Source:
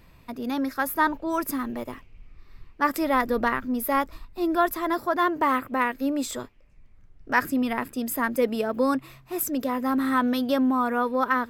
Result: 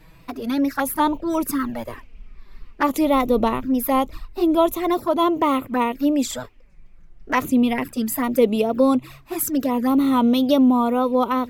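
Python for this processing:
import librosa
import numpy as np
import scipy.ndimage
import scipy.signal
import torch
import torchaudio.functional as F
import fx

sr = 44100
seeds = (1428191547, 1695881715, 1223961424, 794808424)

y = fx.wow_flutter(x, sr, seeds[0], rate_hz=2.1, depth_cents=76.0)
y = fx.env_flanger(y, sr, rest_ms=7.0, full_db=-22.0)
y = F.gain(torch.from_numpy(y), 7.5).numpy()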